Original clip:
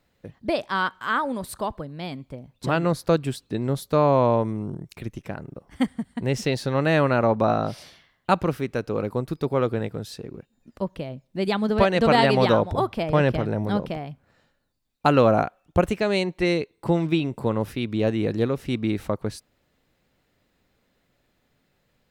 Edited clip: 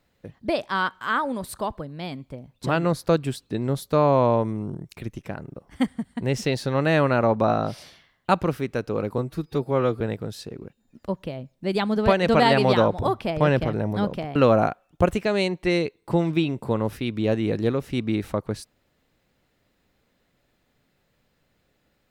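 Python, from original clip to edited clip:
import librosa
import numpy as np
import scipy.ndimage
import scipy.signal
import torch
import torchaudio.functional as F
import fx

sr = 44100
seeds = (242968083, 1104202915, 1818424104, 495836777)

y = fx.edit(x, sr, fx.stretch_span(start_s=9.18, length_s=0.55, factor=1.5),
    fx.cut(start_s=14.08, length_s=1.03), tone=tone)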